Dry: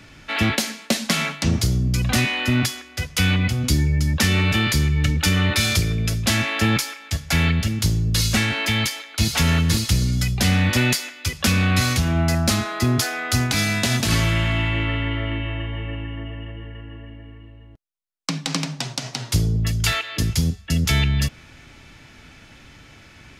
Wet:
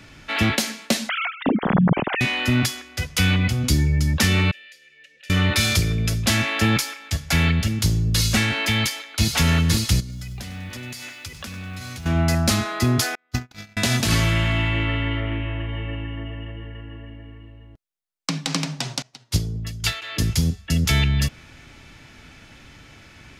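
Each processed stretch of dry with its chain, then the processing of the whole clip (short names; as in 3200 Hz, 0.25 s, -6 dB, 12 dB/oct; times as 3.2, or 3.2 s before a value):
1.09–2.21 sine-wave speech + air absorption 240 m
4.51–5.3 differentiator + upward compressor, threshold -29 dBFS + vowel filter e
10–12.06 compressor 12:1, threshold -31 dBFS + lo-fi delay 98 ms, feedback 55%, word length 8-bit, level -13 dB
13.15–13.77 gate -18 dBFS, range -41 dB + bell 9900 Hz -12 dB 0.67 oct
15.2–15.69 air absorption 190 m + Doppler distortion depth 0.11 ms
19.02–20.02 dynamic EQ 4100 Hz, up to +4 dB, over -34 dBFS, Q 1.1 + upward expander 2.5:1, over -32 dBFS
whole clip: dry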